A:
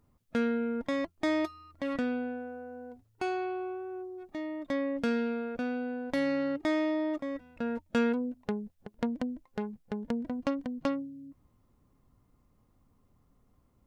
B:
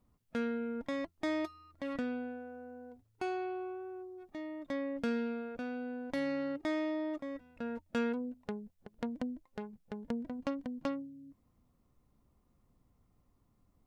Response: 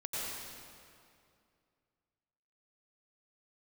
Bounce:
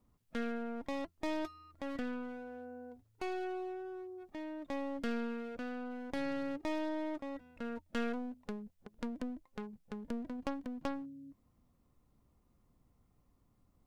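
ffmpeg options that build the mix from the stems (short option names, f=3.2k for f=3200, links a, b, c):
-filter_complex "[0:a]acompressor=threshold=-57dB:ratio=1.5,volume=-16dB[a];[1:a]volume=-0.5dB[b];[a][b]amix=inputs=2:normalize=0,aeval=exprs='clip(val(0),-1,0.0075)':c=same"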